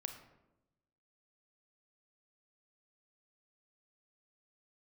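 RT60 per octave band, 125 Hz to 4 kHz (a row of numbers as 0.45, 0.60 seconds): 1.3, 1.2, 1.0, 0.85, 0.70, 0.50 seconds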